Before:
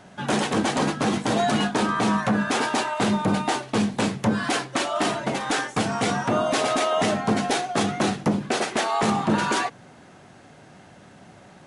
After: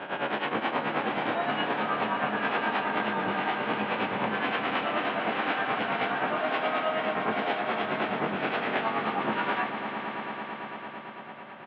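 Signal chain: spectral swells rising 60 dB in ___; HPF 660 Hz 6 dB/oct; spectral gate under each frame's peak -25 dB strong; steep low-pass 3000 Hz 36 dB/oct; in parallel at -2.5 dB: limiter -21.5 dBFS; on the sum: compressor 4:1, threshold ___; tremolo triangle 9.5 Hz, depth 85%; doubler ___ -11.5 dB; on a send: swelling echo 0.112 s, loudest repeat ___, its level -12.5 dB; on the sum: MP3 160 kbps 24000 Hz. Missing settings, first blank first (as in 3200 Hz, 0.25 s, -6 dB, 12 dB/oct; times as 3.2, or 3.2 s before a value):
0.88 s, -23 dBFS, 27 ms, 5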